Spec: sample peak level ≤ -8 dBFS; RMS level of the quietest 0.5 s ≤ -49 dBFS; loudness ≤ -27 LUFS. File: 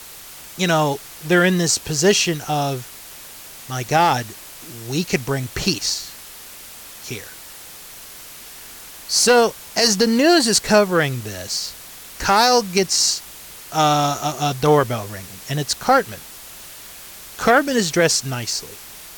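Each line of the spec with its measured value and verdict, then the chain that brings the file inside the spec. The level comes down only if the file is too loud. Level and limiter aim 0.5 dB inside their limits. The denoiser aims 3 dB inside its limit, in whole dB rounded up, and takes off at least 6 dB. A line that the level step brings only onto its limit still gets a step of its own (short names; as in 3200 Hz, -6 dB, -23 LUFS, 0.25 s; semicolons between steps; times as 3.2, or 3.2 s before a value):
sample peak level -3.0 dBFS: fail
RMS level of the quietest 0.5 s -39 dBFS: fail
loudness -18.5 LUFS: fail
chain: denoiser 6 dB, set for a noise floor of -39 dBFS; gain -9 dB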